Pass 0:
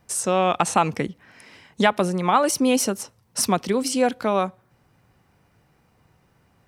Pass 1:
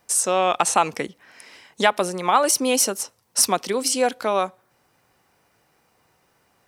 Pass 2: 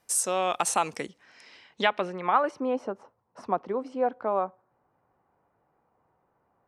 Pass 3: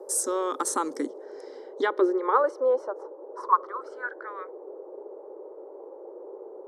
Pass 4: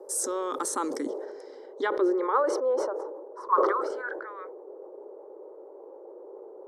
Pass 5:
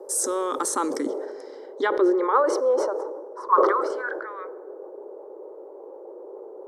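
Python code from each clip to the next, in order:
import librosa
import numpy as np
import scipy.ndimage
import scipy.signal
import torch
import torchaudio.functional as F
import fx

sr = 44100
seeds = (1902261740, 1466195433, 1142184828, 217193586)

y1 = fx.bass_treble(x, sr, bass_db=-13, treble_db=5)
y1 = y1 * 10.0 ** (1.0 / 20.0)
y2 = fx.filter_sweep_lowpass(y1, sr, from_hz=13000.0, to_hz=1000.0, start_s=0.67, end_s=2.78, q=1.3)
y2 = y2 * 10.0 ** (-7.0 / 20.0)
y3 = fx.filter_sweep_highpass(y2, sr, from_hz=270.0, to_hz=2500.0, start_s=1.64, end_s=4.71, q=6.6)
y3 = fx.dmg_noise_band(y3, sr, seeds[0], low_hz=360.0, high_hz=750.0, level_db=-39.0)
y3 = fx.fixed_phaser(y3, sr, hz=700.0, stages=6)
y4 = fx.sustainer(y3, sr, db_per_s=37.0)
y4 = y4 * 10.0 ** (-3.5 / 20.0)
y5 = fx.rev_plate(y4, sr, seeds[1], rt60_s=1.7, hf_ratio=0.6, predelay_ms=0, drr_db=19.5)
y5 = y5 * 10.0 ** (4.5 / 20.0)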